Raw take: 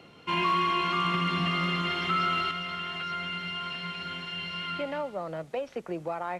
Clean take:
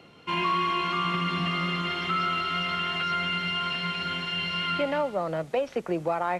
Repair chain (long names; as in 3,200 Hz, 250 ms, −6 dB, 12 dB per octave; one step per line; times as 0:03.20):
clipped peaks rebuilt −18.5 dBFS
level 0 dB, from 0:02.51 +6 dB